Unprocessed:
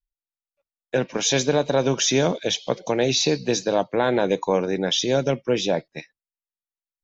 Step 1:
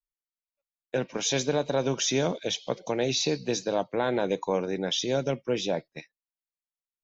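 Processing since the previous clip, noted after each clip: gate -40 dBFS, range -7 dB; band-stop 1.7 kHz, Q 26; trim -6 dB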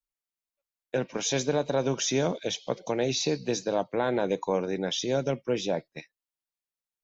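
dynamic bell 3.4 kHz, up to -3 dB, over -40 dBFS, Q 1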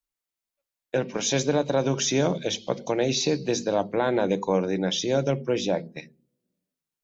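on a send at -8.5 dB: band-pass filter 220 Hz, Q 1.6 + reverberation RT60 0.45 s, pre-delay 3 ms; on the sum: trim +3 dB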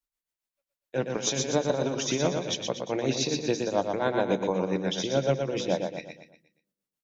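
tremolo triangle 7.2 Hz, depth 80%; on a send: feedback delay 119 ms, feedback 43%, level -5 dB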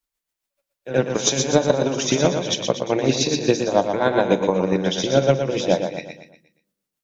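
pre-echo 75 ms -13 dB; transient shaper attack +6 dB, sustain +2 dB; trim +5.5 dB

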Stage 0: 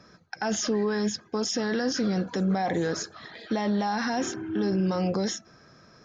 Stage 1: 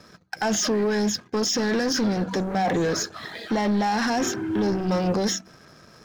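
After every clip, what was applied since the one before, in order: waveshaping leveller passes 2; de-hum 63.1 Hz, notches 5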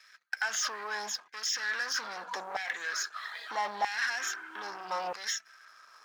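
LFO high-pass saw down 0.78 Hz 840–2000 Hz; trim -7 dB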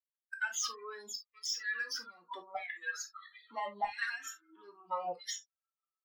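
expander on every frequency bin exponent 3; reverberation, pre-delay 5 ms, DRR 4 dB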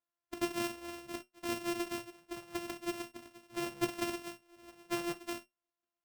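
sorted samples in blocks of 128 samples; feedback comb 120 Hz, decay 0.16 s, harmonics all, mix 70%; trim +6 dB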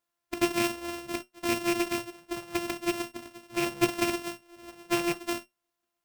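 rattle on loud lows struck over -43 dBFS, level -32 dBFS; trim +8.5 dB

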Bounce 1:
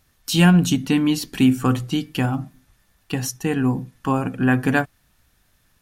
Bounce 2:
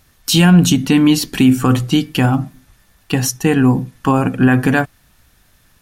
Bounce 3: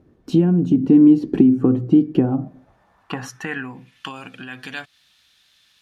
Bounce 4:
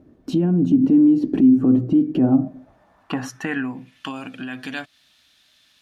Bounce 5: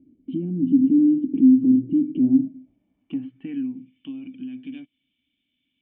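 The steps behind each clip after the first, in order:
loudness maximiser +9.5 dB; trim -1 dB
bass shelf 340 Hz +12 dB; compression 6:1, threshold -11 dBFS, peak gain reduction 14 dB; band-pass sweep 360 Hz -> 3.6 kHz, 2.15–4.16 s; trim +6.5 dB
compression, threshold -13 dBFS, peak gain reduction 6 dB; peak limiter -14 dBFS, peak gain reduction 9.5 dB; small resonant body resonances 270/620 Hz, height 8 dB, ringing for 35 ms
cascade formant filter i

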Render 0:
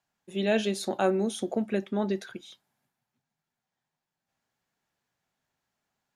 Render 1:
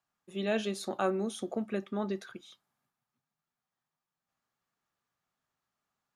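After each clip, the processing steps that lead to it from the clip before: peaking EQ 1.2 kHz +11.5 dB 0.23 oct; trim -5.5 dB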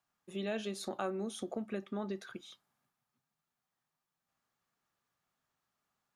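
compression 2:1, threshold -40 dBFS, peak gain reduction 9 dB; trim +1 dB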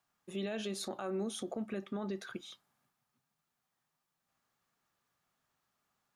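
peak limiter -32.5 dBFS, peak gain reduction 9 dB; trim +3 dB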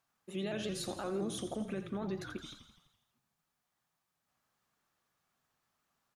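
frequency-shifting echo 84 ms, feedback 60%, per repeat -36 Hz, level -10 dB; vibrato with a chosen wave saw up 5.8 Hz, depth 100 cents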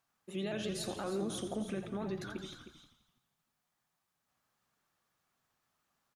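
delay 312 ms -11.5 dB

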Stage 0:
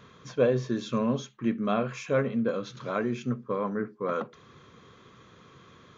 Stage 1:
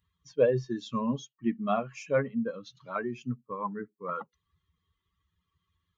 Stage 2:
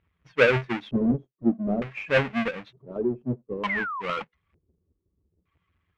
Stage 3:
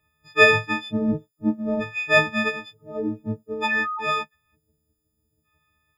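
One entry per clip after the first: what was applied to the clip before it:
expander on every frequency bin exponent 2; dynamic bell 840 Hz, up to +5 dB, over -42 dBFS, Q 0.95
square wave that keeps the level; painted sound fall, 3.69–4.02 s, 940–2200 Hz -34 dBFS; LFO low-pass square 0.55 Hz 390–2300 Hz
partials quantised in pitch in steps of 6 st

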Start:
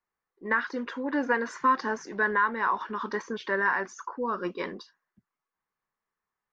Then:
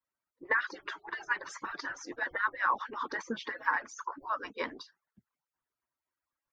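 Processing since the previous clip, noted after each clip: harmonic-percussive separation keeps percussive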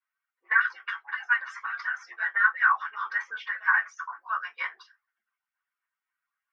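high-pass 1.3 kHz 24 dB/octave; reverberation RT60 0.15 s, pre-delay 3 ms, DRR -5.5 dB; trim -6.5 dB

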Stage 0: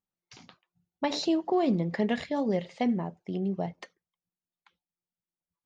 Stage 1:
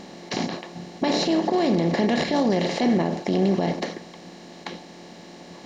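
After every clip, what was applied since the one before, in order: spectral levelling over time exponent 0.4; peak limiter -20 dBFS, peak gain reduction 10 dB; trim +7 dB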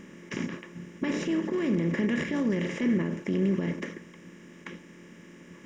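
static phaser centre 1.8 kHz, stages 4; trim -3 dB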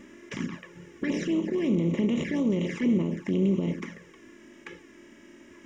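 touch-sensitive flanger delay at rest 3.9 ms, full sweep at -24.5 dBFS; trim +2 dB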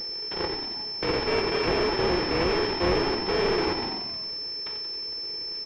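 bit-reversed sample order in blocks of 256 samples; frequency-shifting echo 90 ms, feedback 60%, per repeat -41 Hz, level -8 dB; class-D stage that switches slowly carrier 5.3 kHz; trim +4 dB

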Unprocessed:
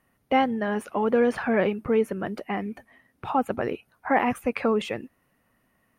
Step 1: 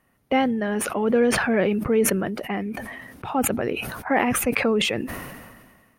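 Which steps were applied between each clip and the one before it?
dynamic bell 1 kHz, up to -6 dB, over -36 dBFS, Q 1.3; decay stretcher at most 36 dB/s; trim +2.5 dB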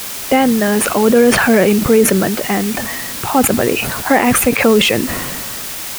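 word length cut 6-bit, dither triangular; loudness maximiser +11.5 dB; trim -1 dB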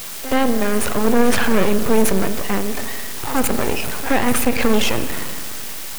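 pre-echo 75 ms -14 dB; half-wave rectifier; spring tank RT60 1.9 s, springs 41 ms, chirp 70 ms, DRR 10.5 dB; trim -2.5 dB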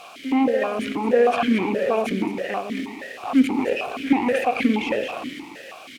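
on a send: delay 220 ms -9 dB; on the sum: stepped vowel filter 6.3 Hz; trim +8.5 dB

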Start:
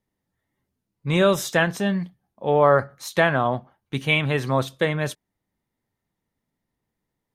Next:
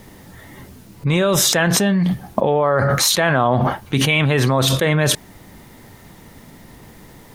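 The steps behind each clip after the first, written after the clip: level flattener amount 100%; trim -2 dB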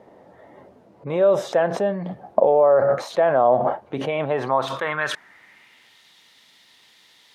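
band-pass sweep 600 Hz -> 3.6 kHz, 4.21–6.03 s; trim +4 dB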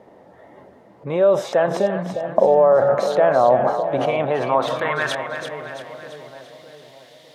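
two-band feedback delay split 700 Hz, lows 607 ms, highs 337 ms, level -8 dB; trim +1.5 dB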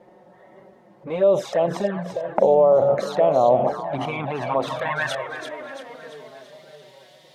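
touch-sensitive flanger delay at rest 5.9 ms, full sweep at -12.5 dBFS

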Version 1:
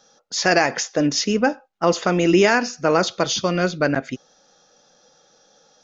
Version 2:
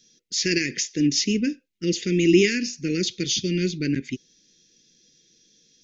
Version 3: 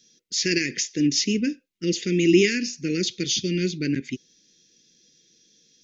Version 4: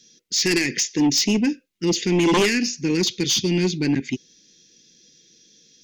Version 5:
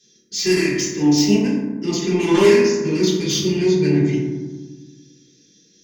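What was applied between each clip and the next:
elliptic band-stop 370–2100 Hz, stop band 50 dB
bass shelf 60 Hz -9 dB
sine folder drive 9 dB, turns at -6.5 dBFS; trim -7.5 dB
reverberation RT60 1.4 s, pre-delay 3 ms, DRR -10.5 dB; trim -9 dB

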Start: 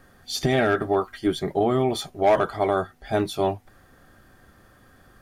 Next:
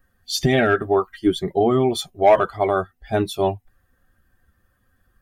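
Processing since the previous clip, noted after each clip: expander on every frequency bin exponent 1.5; trim +6 dB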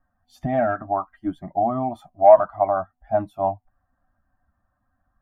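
FFT filter 170 Hz 0 dB, 290 Hz +4 dB, 430 Hz -23 dB, 620 Hz +12 dB, 1 kHz +8 dB, 4.3 kHz -24 dB, 13 kHz -17 dB; trim -8 dB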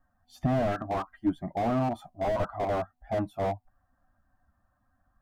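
slew-rate limiter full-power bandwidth 32 Hz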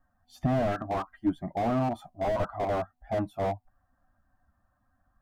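no audible change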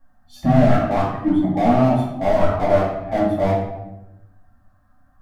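simulated room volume 290 m³, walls mixed, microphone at 2.3 m; trim +3.5 dB

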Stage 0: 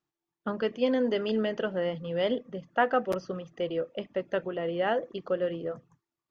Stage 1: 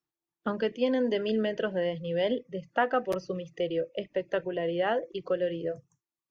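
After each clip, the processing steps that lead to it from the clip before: spectral noise reduction 17 dB; three bands compressed up and down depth 40%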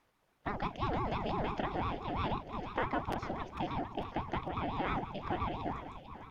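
spectral levelling over time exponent 0.6; two-band feedback delay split 390 Hz, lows 308 ms, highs 448 ms, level -10 dB; ring modulator with a swept carrier 410 Hz, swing 55%, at 5.9 Hz; trim -7 dB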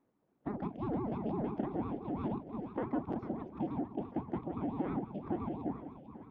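band-pass filter 260 Hz, Q 1.4; trim +5.5 dB

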